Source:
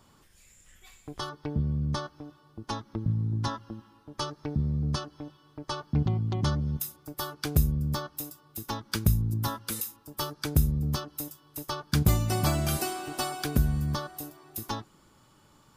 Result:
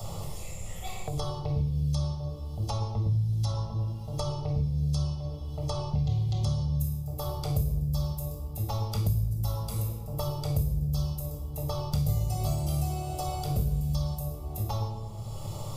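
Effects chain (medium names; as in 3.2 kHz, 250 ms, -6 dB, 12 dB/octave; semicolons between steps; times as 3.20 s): peaking EQ 2 kHz -4.5 dB 2.2 oct; static phaser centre 650 Hz, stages 4; reverberation RT60 0.90 s, pre-delay 19 ms, DRR -1.5 dB; three bands compressed up and down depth 100%; trim -8.5 dB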